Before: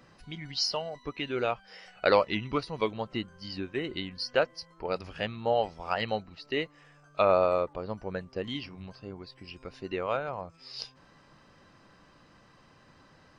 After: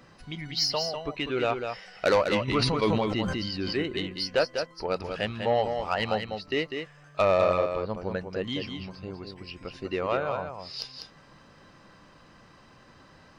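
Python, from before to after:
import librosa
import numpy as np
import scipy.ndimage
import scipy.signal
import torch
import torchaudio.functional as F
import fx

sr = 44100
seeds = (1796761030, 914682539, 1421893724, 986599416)

y = 10.0 ** (-18.5 / 20.0) * np.tanh(x / 10.0 ** (-18.5 / 20.0))
y = y + 10.0 ** (-6.5 / 20.0) * np.pad(y, (int(198 * sr / 1000.0), 0))[:len(y)]
y = fx.sustainer(y, sr, db_per_s=22.0, at=(2.47, 3.81), fade=0.02)
y = F.gain(torch.from_numpy(y), 3.5).numpy()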